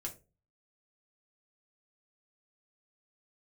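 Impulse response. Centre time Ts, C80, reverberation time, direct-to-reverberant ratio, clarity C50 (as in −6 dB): 13 ms, 20.0 dB, 0.30 s, −1.0 dB, 14.0 dB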